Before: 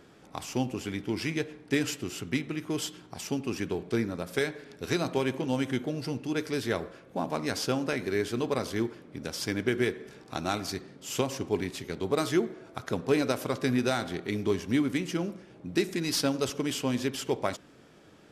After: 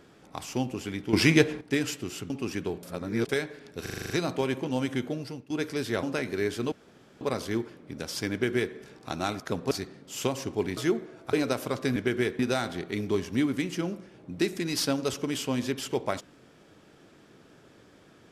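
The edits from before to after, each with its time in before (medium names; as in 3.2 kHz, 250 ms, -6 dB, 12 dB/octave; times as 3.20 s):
1.13–1.61 s: gain +11 dB
2.30–3.35 s: delete
3.88–4.34 s: reverse
4.87 s: stutter 0.04 s, 8 plays
5.90–6.27 s: fade out, to -19.5 dB
6.80–7.77 s: delete
8.46 s: insert room tone 0.49 s
9.57–10.00 s: copy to 13.75 s
11.71–12.25 s: delete
12.81–13.12 s: move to 10.65 s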